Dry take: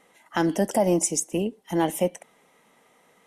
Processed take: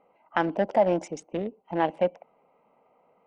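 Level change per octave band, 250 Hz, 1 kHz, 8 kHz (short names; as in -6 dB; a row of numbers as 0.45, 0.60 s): -6.0, +1.5, -22.5 dB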